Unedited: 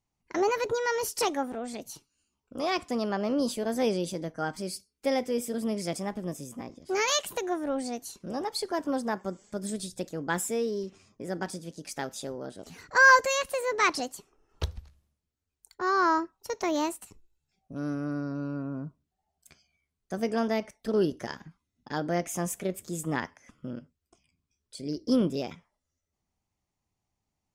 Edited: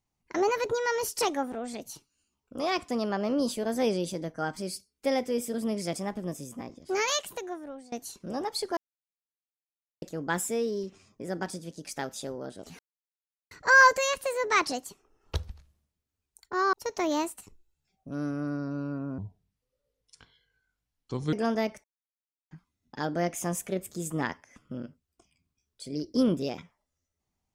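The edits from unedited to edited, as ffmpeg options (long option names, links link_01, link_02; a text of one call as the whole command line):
ffmpeg -i in.wav -filter_complex "[0:a]asplit=10[link_01][link_02][link_03][link_04][link_05][link_06][link_07][link_08][link_09][link_10];[link_01]atrim=end=7.92,asetpts=PTS-STARTPTS,afade=type=out:start_time=6.91:duration=1.01:silence=0.0841395[link_11];[link_02]atrim=start=7.92:end=8.77,asetpts=PTS-STARTPTS,afade=type=in:duration=0.004:curve=hsin:silence=0.0841395,afade=type=out:start_time=0.846:duration=0.004:curve=hsin[link_12];[link_03]atrim=start=8.77:end=10.02,asetpts=PTS-STARTPTS,volume=0[link_13];[link_04]atrim=start=10.02:end=12.79,asetpts=PTS-STARTPTS,afade=type=in:duration=0.004:curve=hsin,afade=type=out:start_time=2.766:duration=0.004:curve=hsin,apad=pad_dur=0.72[link_14];[link_05]atrim=start=12.79:end=16.012,asetpts=PTS-STARTPTS,afade=type=in:duration=0.004:curve=hsin[link_15];[link_06]atrim=start=16.368:end=18.824[link_16];[link_07]atrim=start=18.82:end=20.26,asetpts=PTS-STARTPTS,asetrate=29547,aresample=44100,atrim=end_sample=94782,asetpts=PTS-STARTPTS[link_17];[link_08]atrim=start=20.256:end=20.77,asetpts=PTS-STARTPTS,afade=type=out:start_time=0.51:duration=0.004:curve=hsin[link_18];[link_09]atrim=start=20.77:end=21.44,asetpts=PTS-STARTPTS,volume=0[link_19];[link_10]atrim=start=21.44,asetpts=PTS-STARTPTS,afade=type=in:duration=0.004:curve=hsin[link_20];[link_11][link_12][link_13][link_14][link_15]concat=n=5:v=0:a=1[link_21];[link_21][link_16]acrossfade=duration=0.004:curve1=hsin:curve2=hsin[link_22];[link_22][link_17]acrossfade=duration=0.004:curve1=hsin:curve2=hsin[link_23];[link_18][link_19][link_20]concat=n=3:v=0:a=1[link_24];[link_23][link_24]acrossfade=duration=0.004:curve1=hsin:curve2=hsin" out.wav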